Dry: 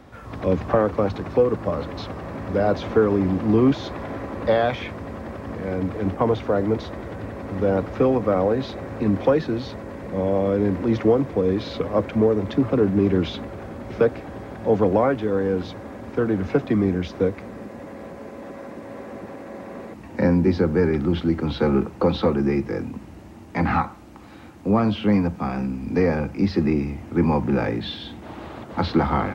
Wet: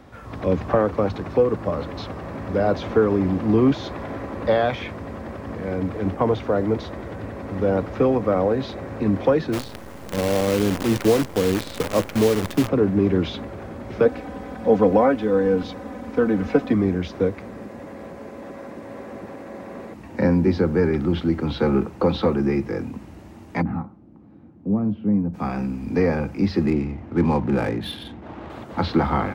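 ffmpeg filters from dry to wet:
ffmpeg -i in.wav -filter_complex "[0:a]asplit=3[link_01][link_02][link_03];[link_01]afade=type=out:start_time=9.52:duration=0.02[link_04];[link_02]acrusher=bits=5:dc=4:mix=0:aa=0.000001,afade=type=in:start_time=9.52:duration=0.02,afade=type=out:start_time=12.67:duration=0.02[link_05];[link_03]afade=type=in:start_time=12.67:duration=0.02[link_06];[link_04][link_05][link_06]amix=inputs=3:normalize=0,asettb=1/sr,asplit=3[link_07][link_08][link_09];[link_07]atrim=end=14.054[link_10];[link_08]atrim=start=14.05:end=16.73,asetpts=PTS-STARTPTS,afade=type=in:duration=0.004:curve=qsin,afade=type=out:start_time=2.676:duration=0.004:curve=qsin,aecho=1:1:4:0.65,atrim=end_sample=118188[link_11];[link_09]atrim=start=16.726[link_12];[link_10][link_11]acrossfade=duration=0.004:curve1=hsin:curve2=qsin[link_13];[link_13][link_12]acrossfade=duration=0.004:curve1=qsin:curve2=hsin,asplit=3[link_14][link_15][link_16];[link_14]afade=type=out:start_time=23.61:duration=0.02[link_17];[link_15]bandpass=frequency=180:width_type=q:width=1.1,afade=type=in:start_time=23.61:duration=0.02,afade=type=out:start_time=25.33:duration=0.02[link_18];[link_16]afade=type=in:start_time=25.33:duration=0.02[link_19];[link_17][link_18][link_19]amix=inputs=3:normalize=0,asettb=1/sr,asplit=3[link_20][link_21][link_22];[link_20]atrim=end=26.664[link_23];[link_21]atrim=start=26.66:end=28.5,asetpts=PTS-STARTPTS,afade=type=in:duration=0.004:curve=qsin,afade=type=out:start_time=1.836:duration=0.004:curve=qsin,adynamicsmooth=sensitivity=7.5:basefreq=2000[link_24];[link_22]atrim=start=28.496[link_25];[link_23][link_24]acrossfade=duration=0.004:curve1=hsin:curve2=qsin[link_26];[link_26][link_25]acrossfade=duration=0.004:curve1=qsin:curve2=hsin" out.wav

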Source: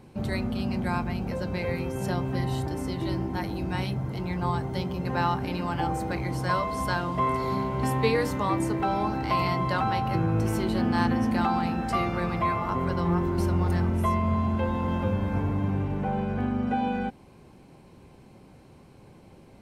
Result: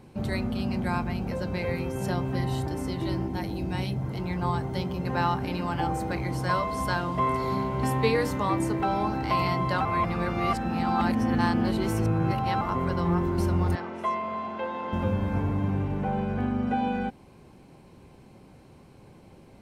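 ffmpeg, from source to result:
ffmpeg -i in.wav -filter_complex "[0:a]asettb=1/sr,asplit=3[link_01][link_02][link_03];[link_01]atrim=end=3.284[link_04];[link_02]atrim=start=3.28:end=4.02,asetpts=PTS-STARTPTS,afade=type=in:duration=0.004:curve=qsin,afade=type=out:start_time=0.736:duration=0.004:curve=qsin,equalizer=frequency=1300:width_type=o:width=1.2:gain=-5.5[link_05];[link_03]atrim=start=4.016[link_06];[link_04][link_05]acrossfade=duration=0.004:curve1=hsin:curve2=qsin[link_07];[link_07][link_06]acrossfade=duration=0.004:curve1=qsin:curve2=hsin,asettb=1/sr,asplit=3[link_08][link_09][link_10];[link_08]atrim=end=13.754[link_11];[link_09]atrim=start=13.75:end=14.93,asetpts=PTS-STARTPTS,afade=type=in:duration=0.004:curve=qsin,afade=type=out:start_time=1.176:duration=0.004:curve=qsin,highpass=430,lowpass=4700[link_12];[link_10]atrim=start=14.926[link_13];[link_11][link_12]acrossfade=duration=0.004:curve1=hsin:curve2=qsin[link_14];[link_14][link_13]acrossfade=duration=0.004:curve1=qsin:curve2=hsin,asplit=3[link_15][link_16][link_17];[link_15]atrim=end=9.852[link_18];[link_16]atrim=start=9.848:end=12.612,asetpts=PTS-STARTPTS,areverse[link_19];[link_17]atrim=start=12.608[link_20];[link_18][link_19]acrossfade=duration=0.004:curve1=hsin:curve2=hsin[link_21];[link_21][link_20]acrossfade=duration=0.004:curve1=hsin:curve2=hsin" out.wav

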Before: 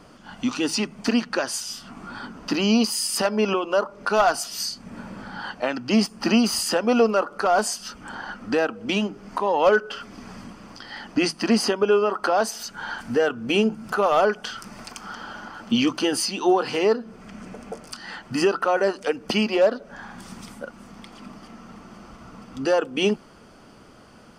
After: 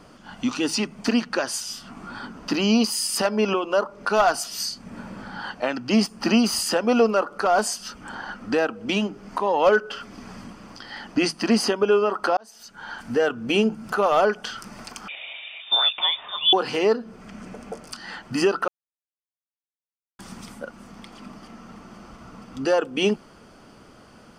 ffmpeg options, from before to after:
ffmpeg -i in.wav -filter_complex "[0:a]asettb=1/sr,asplit=3[link_01][link_02][link_03];[link_01]atrim=end=15.084[link_04];[link_02]atrim=start=15.08:end=16.53,asetpts=PTS-STARTPTS,afade=type=in:duration=0.004:curve=qsin,afade=type=out:start_time=1.446:duration=0.004:curve=qsin,lowpass=frequency=3200:width_type=q:width=0.5098,lowpass=frequency=3200:width_type=q:width=0.6013,lowpass=frequency=3200:width_type=q:width=0.9,lowpass=frequency=3200:width_type=q:width=2.563,afreqshift=-3800[link_05];[link_03]atrim=start=16.526[link_06];[link_04][link_05]acrossfade=duration=0.004:curve1=hsin:curve2=qsin[link_07];[link_07][link_06]acrossfade=duration=0.004:curve1=qsin:curve2=hsin,asplit=4[link_08][link_09][link_10][link_11];[link_08]atrim=end=12.37,asetpts=PTS-STARTPTS,afade=type=out:start_time=12.366:duration=0.004:curve=hsin[link_12];[link_09]atrim=start=12.37:end=18.68,asetpts=PTS-STARTPTS,afade=type=in:duration=0.87,afade=type=out:start_time=6.306:duration=0.004:curve=hsin[link_13];[link_10]atrim=start=18.68:end=20.19,asetpts=PTS-STARTPTS,volume=0[link_14];[link_11]atrim=start=20.19,asetpts=PTS-STARTPTS,afade=type=in:duration=0.004:curve=hsin[link_15];[link_12][link_13][link_14][link_15]concat=n=4:v=0:a=1" out.wav

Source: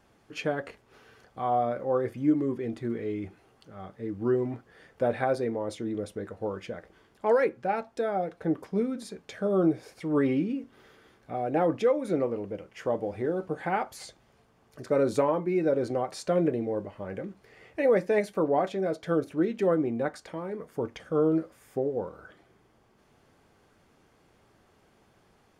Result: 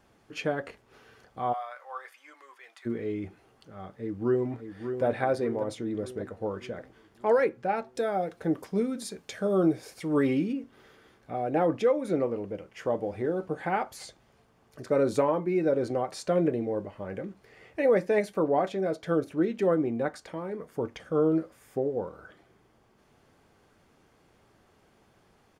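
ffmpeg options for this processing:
ffmpeg -i in.wav -filter_complex "[0:a]asplit=3[link_01][link_02][link_03];[link_01]afade=type=out:start_time=1.52:duration=0.02[link_04];[link_02]highpass=frequency=950:width=0.5412,highpass=frequency=950:width=1.3066,afade=type=in:start_time=1.52:duration=0.02,afade=type=out:start_time=2.85:duration=0.02[link_05];[link_03]afade=type=in:start_time=2.85:duration=0.02[link_06];[link_04][link_05][link_06]amix=inputs=3:normalize=0,asplit=2[link_07][link_08];[link_08]afade=type=in:start_time=3.98:duration=0.01,afade=type=out:start_time=5.04:duration=0.01,aecho=0:1:590|1180|1770|2360|2950|3540|4130:0.398107|0.218959|0.120427|0.0662351|0.0364293|0.0200361|0.0110199[link_09];[link_07][link_09]amix=inputs=2:normalize=0,asettb=1/sr,asplit=3[link_10][link_11][link_12];[link_10]atrim=end=7.954[link_13];[link_11]atrim=start=7.95:end=10.53,asetpts=PTS-STARTPTS,afade=type=in:duration=0.004:curve=qsin,afade=type=out:start_time=2.576:duration=0.004:curve=qsin,highshelf=frequency=4100:gain=9[link_14];[link_12]atrim=start=10.526[link_15];[link_13][link_14]acrossfade=duration=0.004:curve1=hsin:curve2=qsin[link_16];[link_16][link_15]acrossfade=duration=0.004:curve1=qsin:curve2=hsin" out.wav

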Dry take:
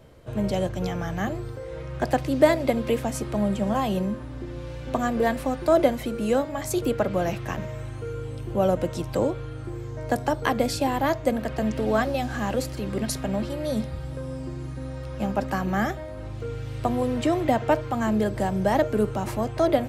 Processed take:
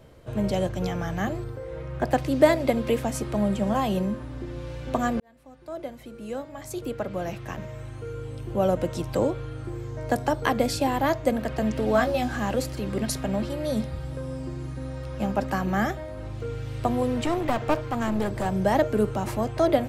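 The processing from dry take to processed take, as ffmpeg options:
ffmpeg -i in.wav -filter_complex "[0:a]asettb=1/sr,asplit=3[link_01][link_02][link_03];[link_01]atrim=end=1.444[link_04];[link_02]atrim=start=1.44:end=2.13,asetpts=PTS-STARTPTS,afade=type=in:duration=0.004:curve=qsin,afade=type=out:start_time=0.686:duration=0.004:curve=qsin,equalizer=frequency=6200:width=0.47:gain=-6.5[link_05];[link_03]atrim=start=2.126[link_06];[link_04][link_05]acrossfade=duration=0.004:curve1=hsin:curve2=qsin[link_07];[link_07][link_06]acrossfade=duration=0.004:curve1=qsin:curve2=hsin,asettb=1/sr,asplit=3[link_08][link_09][link_10];[link_08]atrim=end=11.934[link_11];[link_09]atrim=start=11.93:end=12.36,asetpts=PTS-STARTPTS,afade=type=in:duration=0.004:curve=qsin,afade=type=out:start_time=0.426:duration=0.004:curve=qsin,asplit=2[link_12][link_13];[link_13]adelay=20,volume=-6dB[link_14];[link_12][link_14]amix=inputs=2:normalize=0,atrim=end_sample=18963[link_15];[link_10]atrim=start=12.356[link_16];[link_11][link_15]acrossfade=duration=0.004:curve1=hsin:curve2=qsin[link_17];[link_17][link_16]acrossfade=duration=0.004:curve1=qsin:curve2=hsin,asettb=1/sr,asplit=3[link_18][link_19][link_20];[link_18]atrim=end=17.244[link_21];[link_19]atrim=start=17.24:end=18.46,asetpts=PTS-STARTPTS,afade=type=in:duration=0.004:curve=qsin,afade=type=out:start_time=1.216:duration=0.004:curve=qsin,aeval=exprs='clip(val(0),-1,0.0355)':channel_layout=same[link_22];[link_20]atrim=start=18.456[link_23];[link_21][link_22]acrossfade=duration=0.004:curve1=hsin:curve2=qsin[link_24];[link_24][link_23]acrossfade=duration=0.004:curve1=qsin:curve2=hsin,asplit=2[link_25][link_26];[link_25]atrim=end=5.2,asetpts=PTS-STARTPTS,afade=type=out:start_time=5.196:duration=0.004:curve=hsin[link_27];[link_26]atrim=start=5.2,asetpts=PTS-STARTPTS,afade=type=in:duration=3.87[link_28];[link_27][link_28]concat=n=2:v=0:a=1" out.wav

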